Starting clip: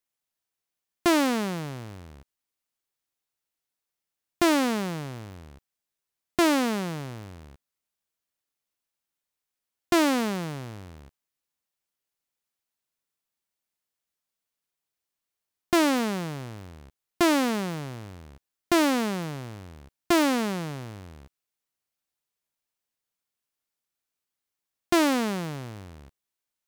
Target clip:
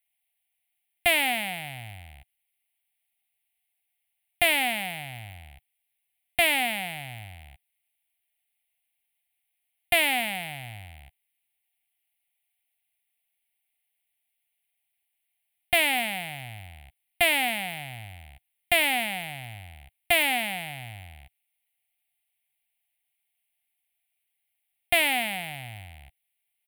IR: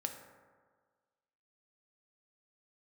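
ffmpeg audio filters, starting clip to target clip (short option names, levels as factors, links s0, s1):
-af "firequalizer=gain_entry='entry(110,0);entry(160,-11);entry(240,-12);entry(420,-26);entry(740,8);entry(1100,-20);entry(2100,12);entry(3200,8);entry(5900,-22);entry(9400,9)':delay=0.05:min_phase=1"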